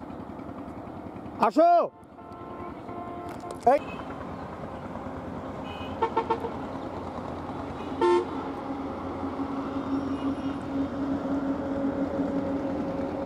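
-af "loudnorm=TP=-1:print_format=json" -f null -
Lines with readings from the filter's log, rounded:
"input_i" : "-29.8",
"input_tp" : "-7.5",
"input_lra" : "4.8",
"input_thresh" : "-40.0",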